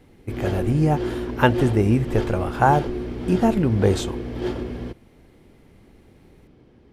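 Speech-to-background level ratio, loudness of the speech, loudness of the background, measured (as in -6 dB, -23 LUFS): 7.5 dB, -21.5 LUFS, -29.0 LUFS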